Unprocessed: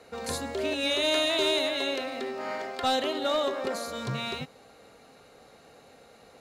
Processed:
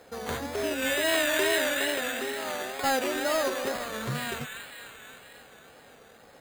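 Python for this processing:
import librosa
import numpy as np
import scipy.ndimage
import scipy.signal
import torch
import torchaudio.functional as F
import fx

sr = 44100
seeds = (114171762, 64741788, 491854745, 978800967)

y = fx.peak_eq(x, sr, hz=2600.0, db=-3.0, octaves=0.2)
y = fx.echo_wet_highpass(y, sr, ms=266, feedback_pct=65, hz=2000.0, wet_db=-4.5)
y = np.repeat(y[::8], 8)[:len(y)]
y = fx.wow_flutter(y, sr, seeds[0], rate_hz=2.1, depth_cents=89.0)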